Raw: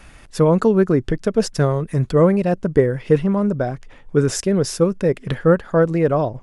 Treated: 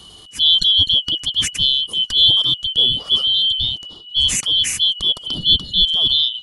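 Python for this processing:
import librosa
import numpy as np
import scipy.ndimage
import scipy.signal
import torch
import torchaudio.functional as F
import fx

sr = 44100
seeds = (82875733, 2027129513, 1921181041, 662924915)

y = fx.band_shuffle(x, sr, order='2413')
y = fx.bass_treble(y, sr, bass_db=11, treble_db=8)
y = fx.transient(y, sr, attack_db=-6, sustain_db=3)
y = y * 10.0 ** (-1.0 / 20.0)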